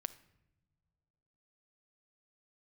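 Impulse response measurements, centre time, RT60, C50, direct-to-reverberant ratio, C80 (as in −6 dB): 3 ms, non-exponential decay, 15.5 dB, 13.5 dB, 19.0 dB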